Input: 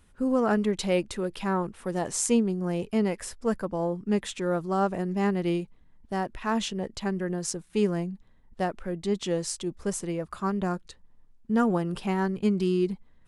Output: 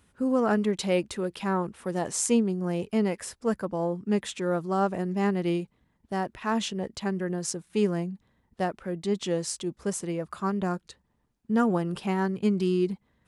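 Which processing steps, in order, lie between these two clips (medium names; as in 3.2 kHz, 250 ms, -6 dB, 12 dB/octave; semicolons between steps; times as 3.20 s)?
high-pass 72 Hz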